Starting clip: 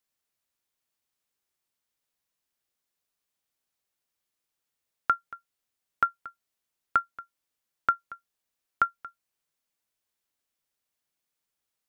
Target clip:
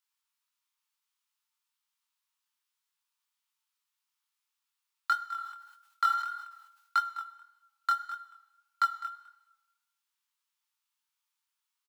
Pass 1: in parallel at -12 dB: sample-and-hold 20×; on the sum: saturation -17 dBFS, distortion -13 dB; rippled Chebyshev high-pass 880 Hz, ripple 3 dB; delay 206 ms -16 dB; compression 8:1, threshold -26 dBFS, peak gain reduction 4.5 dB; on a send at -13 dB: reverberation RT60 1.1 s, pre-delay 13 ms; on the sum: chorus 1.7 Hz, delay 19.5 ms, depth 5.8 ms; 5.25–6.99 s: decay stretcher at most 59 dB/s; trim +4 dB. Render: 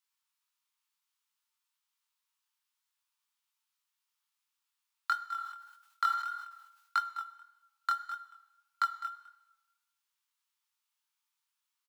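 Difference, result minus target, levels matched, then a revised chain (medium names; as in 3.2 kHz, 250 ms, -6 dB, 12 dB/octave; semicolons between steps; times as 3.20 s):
compression: peak gain reduction +4.5 dB
in parallel at -12 dB: sample-and-hold 20×; on the sum: saturation -17 dBFS, distortion -13 dB; rippled Chebyshev high-pass 880 Hz, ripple 3 dB; delay 206 ms -16 dB; on a send at -13 dB: reverberation RT60 1.1 s, pre-delay 13 ms; on the sum: chorus 1.7 Hz, delay 19.5 ms, depth 5.8 ms; 5.25–6.99 s: decay stretcher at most 59 dB/s; trim +4 dB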